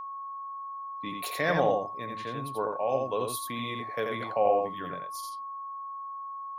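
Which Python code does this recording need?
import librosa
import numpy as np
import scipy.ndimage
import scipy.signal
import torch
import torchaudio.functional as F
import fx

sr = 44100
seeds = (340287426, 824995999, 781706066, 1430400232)

y = fx.notch(x, sr, hz=1100.0, q=30.0)
y = fx.fix_echo_inverse(y, sr, delay_ms=86, level_db=-4.0)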